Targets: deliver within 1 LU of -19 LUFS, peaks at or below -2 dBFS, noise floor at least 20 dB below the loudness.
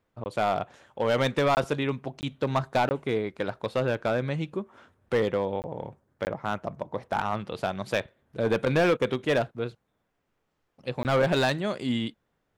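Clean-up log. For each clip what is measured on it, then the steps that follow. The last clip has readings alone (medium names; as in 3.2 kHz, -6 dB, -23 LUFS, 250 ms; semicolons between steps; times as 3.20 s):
clipped samples 0.9%; clipping level -17.5 dBFS; dropouts 7; longest dropout 19 ms; loudness -28.0 LUFS; peak level -17.5 dBFS; loudness target -19.0 LUFS
-> clip repair -17.5 dBFS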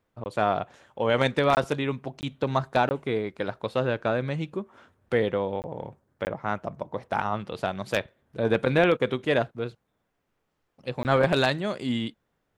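clipped samples 0.0%; dropouts 7; longest dropout 19 ms
-> interpolate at 0.24/1.55/2.21/2.89/5.62/6.25/11.03 s, 19 ms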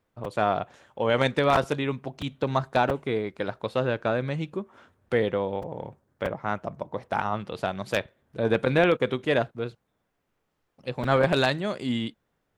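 dropouts 0; loudness -27.0 LUFS; peak level -7.5 dBFS; loudness target -19.0 LUFS
-> trim +8 dB; peak limiter -2 dBFS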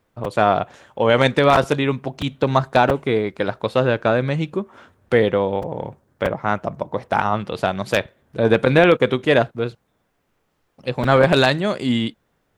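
loudness -19.5 LUFS; peak level -2.0 dBFS; noise floor -69 dBFS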